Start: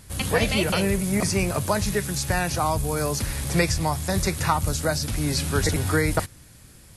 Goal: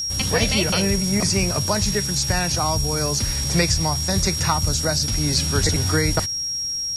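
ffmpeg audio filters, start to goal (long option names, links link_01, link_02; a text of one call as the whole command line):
ffmpeg -i in.wav -filter_complex "[0:a]bass=frequency=250:gain=3,treble=frequency=4000:gain=12,aeval=exprs='val(0)+0.0794*sin(2*PI*5600*n/s)':channel_layout=same,acrossover=split=6300[link_01][link_02];[link_02]acompressor=threshold=-35dB:ratio=4:attack=1:release=60[link_03];[link_01][link_03]amix=inputs=2:normalize=0" out.wav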